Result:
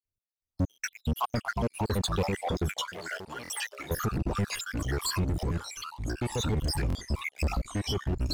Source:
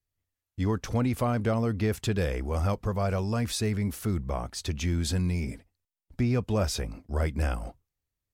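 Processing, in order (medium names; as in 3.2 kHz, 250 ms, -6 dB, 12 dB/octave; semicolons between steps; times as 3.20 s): random holes in the spectrogram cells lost 82%; waveshaping leveller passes 3; 5.23–6.40 s: comb 2.3 ms, depth 45%; ever faster or slower copies 359 ms, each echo -3 st, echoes 3; peak limiter -22 dBFS, peak gain reduction 8.5 dB; 2.87–3.91 s: high-pass 1.4 kHz 6 dB/octave; buffer glitch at 0.71/3.43/6.88 s, samples 1024, times 2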